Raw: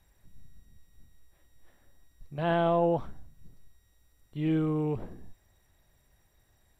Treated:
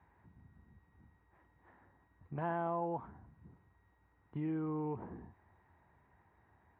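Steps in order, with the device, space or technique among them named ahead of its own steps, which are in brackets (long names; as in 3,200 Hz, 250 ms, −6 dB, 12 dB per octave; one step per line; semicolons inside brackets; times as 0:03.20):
bass amplifier (downward compressor 5 to 1, threshold −38 dBFS, peak gain reduction 14.5 dB; loudspeaker in its box 74–2,000 Hz, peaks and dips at 110 Hz −4 dB, 150 Hz −3 dB, 570 Hz −7 dB, 930 Hz +9 dB)
level +3 dB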